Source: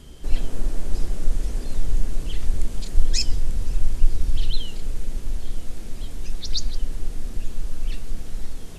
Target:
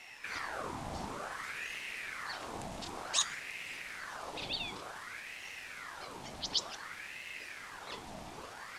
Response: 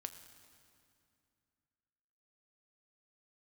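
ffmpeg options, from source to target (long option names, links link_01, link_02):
-af "highpass=230,aemphasis=mode=reproduction:type=50kf,aeval=exprs='val(0)*sin(2*PI*1400*n/s+1400*0.7/0.55*sin(2*PI*0.55*n/s))':channel_layout=same,volume=3.5dB"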